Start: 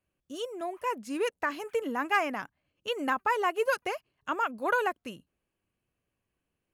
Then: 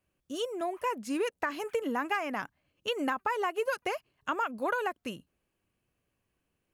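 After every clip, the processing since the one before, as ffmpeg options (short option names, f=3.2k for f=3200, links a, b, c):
-af "acompressor=threshold=-30dB:ratio=6,volume=3dB"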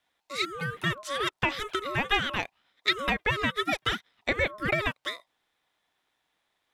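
-af "equalizer=f=2.9k:t=o:w=2.7:g=13.5,aeval=exprs='val(0)*sin(2*PI*840*n/s)':c=same"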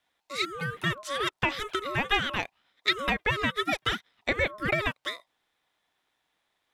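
-af anull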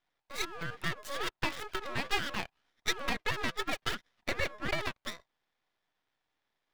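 -filter_complex "[0:a]acrossover=split=420|4500[a][b][c];[c]acrusher=bits=6:mix=0:aa=0.000001[d];[a][b][d]amix=inputs=3:normalize=0,aeval=exprs='max(val(0),0)':c=same,volume=-2dB"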